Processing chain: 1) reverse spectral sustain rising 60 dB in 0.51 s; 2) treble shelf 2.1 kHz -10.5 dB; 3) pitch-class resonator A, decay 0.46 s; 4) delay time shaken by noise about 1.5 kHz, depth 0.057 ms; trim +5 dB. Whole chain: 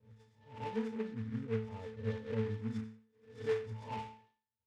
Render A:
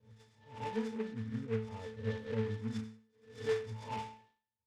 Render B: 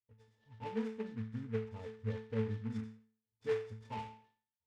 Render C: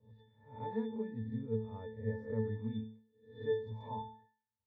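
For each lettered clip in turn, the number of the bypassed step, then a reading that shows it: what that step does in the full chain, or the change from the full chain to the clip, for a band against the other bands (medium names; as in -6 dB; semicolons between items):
2, 4 kHz band +3.5 dB; 1, momentary loudness spread change -2 LU; 4, 4 kHz band -4.0 dB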